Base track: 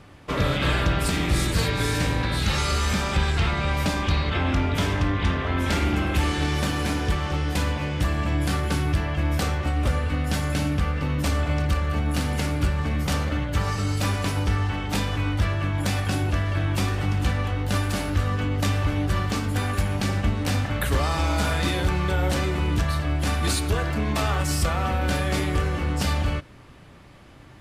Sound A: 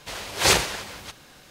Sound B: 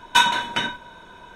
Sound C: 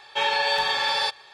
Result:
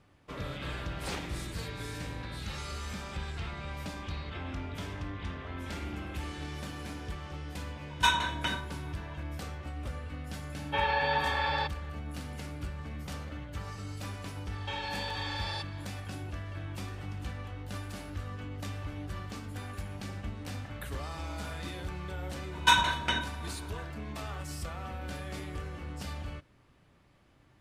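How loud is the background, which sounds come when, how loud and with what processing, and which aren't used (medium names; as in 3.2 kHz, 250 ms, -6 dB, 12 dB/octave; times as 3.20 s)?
base track -15.5 dB
0.62 s: add A -17.5 dB + low-pass 2.3 kHz 6 dB/octave
7.88 s: add B -9 dB
10.57 s: add C -4 dB + low-pass 2.3 kHz
14.52 s: add C -6 dB + compression 4:1, threshold -29 dBFS
22.52 s: add B -6 dB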